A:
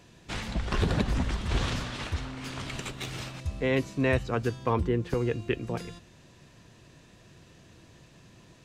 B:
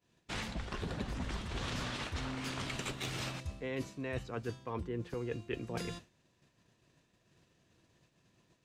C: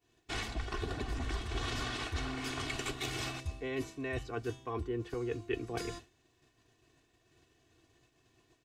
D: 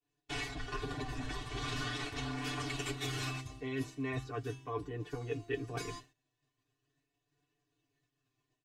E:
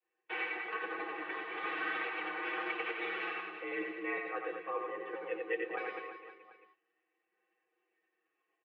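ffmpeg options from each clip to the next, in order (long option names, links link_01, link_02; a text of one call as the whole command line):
ffmpeg -i in.wav -af "agate=range=-33dB:threshold=-42dB:ratio=3:detection=peak,lowshelf=frequency=100:gain=-6,areverse,acompressor=threshold=-38dB:ratio=12,areverse,volume=3dB" out.wav
ffmpeg -i in.wav -af "aecho=1:1:2.7:0.75" out.wav
ffmpeg -i in.wav -af "aecho=1:1:6.8:0.97,flanger=delay=6.8:depth=1.2:regen=37:speed=0.4:shape=triangular,agate=range=-13dB:threshold=-60dB:ratio=16:detection=peak" out.wav
ffmpeg -i in.wav -filter_complex "[0:a]crystalizer=i=6.5:c=0,asplit=2[link_01][link_02];[link_02]aecho=0:1:90|202.5|343.1|518.9|738.6:0.631|0.398|0.251|0.158|0.1[link_03];[link_01][link_03]amix=inputs=2:normalize=0,highpass=frequency=280:width_type=q:width=0.5412,highpass=frequency=280:width_type=q:width=1.307,lowpass=frequency=2300:width_type=q:width=0.5176,lowpass=frequency=2300:width_type=q:width=0.7071,lowpass=frequency=2300:width_type=q:width=1.932,afreqshift=53,volume=-1dB" out.wav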